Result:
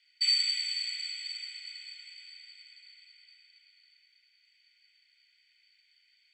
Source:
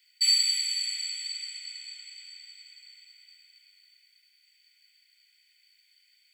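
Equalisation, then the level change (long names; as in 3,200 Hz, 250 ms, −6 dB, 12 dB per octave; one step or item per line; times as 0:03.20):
low-pass filter 4,400 Hz 12 dB per octave
0.0 dB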